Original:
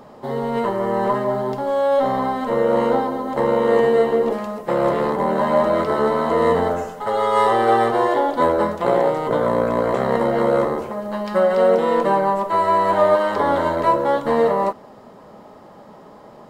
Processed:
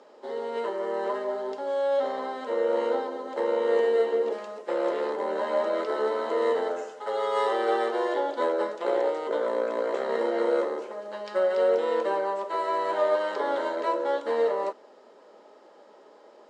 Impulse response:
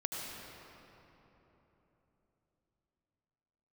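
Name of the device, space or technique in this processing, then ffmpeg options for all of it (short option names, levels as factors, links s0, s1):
phone speaker on a table: -filter_complex "[0:a]highpass=f=350:w=0.5412,highpass=f=350:w=1.3066,equalizer=f=730:t=q:w=4:g=-7,equalizer=f=1100:t=q:w=4:g=-8,equalizer=f=2000:t=q:w=4:g=-3,lowpass=f=7700:w=0.5412,lowpass=f=7700:w=1.3066,asettb=1/sr,asplit=3[s0][s1][s2];[s0]atrim=end=10.064[s3];[s1]atrim=start=10.06:end=10.61,asetpts=PTS-STARTPTS,afade=t=in:d=0.004:c=qsin,afade=t=out:st=0.546:d=0.004:c=qsin,asplit=2[s4][s5];[s5]adelay=35,volume=0.531[s6];[s4][s6]amix=inputs=2:normalize=0,atrim=end_sample=24255[s7];[s2]atrim=start=10.606[s8];[s3][s7]acrossfade=d=0.004:c1=hsin:c2=qsin[s9];[s9][s8]acrossfade=d=0.004:c1=qsin:c2=hsin,volume=0.531"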